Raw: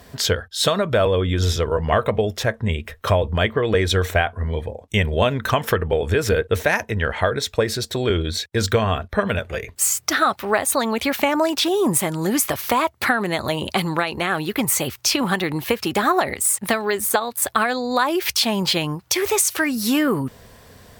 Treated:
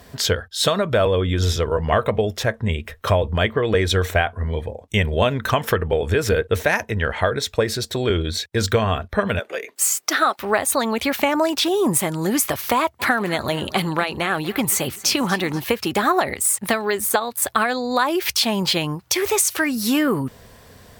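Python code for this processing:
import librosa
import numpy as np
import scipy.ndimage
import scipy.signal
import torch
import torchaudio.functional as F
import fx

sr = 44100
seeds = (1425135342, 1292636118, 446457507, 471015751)

y = fx.highpass(x, sr, hz=280.0, slope=24, at=(9.4, 10.39))
y = fx.echo_feedback(y, sr, ms=241, feedback_pct=41, wet_db=-17.5, at=(12.99, 15.59), fade=0.02)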